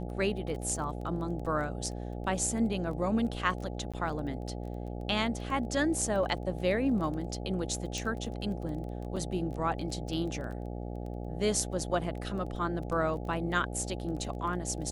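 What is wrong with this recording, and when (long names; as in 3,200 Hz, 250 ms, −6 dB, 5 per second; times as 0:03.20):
mains buzz 60 Hz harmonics 14 −38 dBFS
surface crackle 15 per second −39 dBFS
0:03.92–0:03.94: drop-out 16 ms
0:07.98: click
0:09.16–0:09.17: drop-out 5.5 ms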